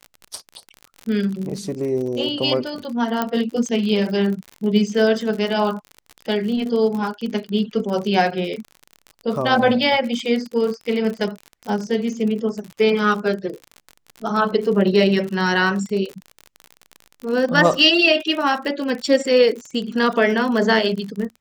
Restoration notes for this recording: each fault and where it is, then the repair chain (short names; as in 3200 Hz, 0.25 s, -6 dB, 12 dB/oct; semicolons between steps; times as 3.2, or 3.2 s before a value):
crackle 50/s -27 dBFS
3.22 pop -7 dBFS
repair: de-click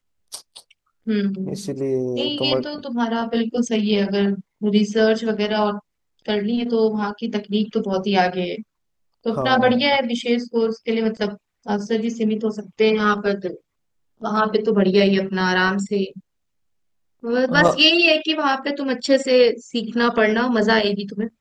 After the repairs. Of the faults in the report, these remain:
none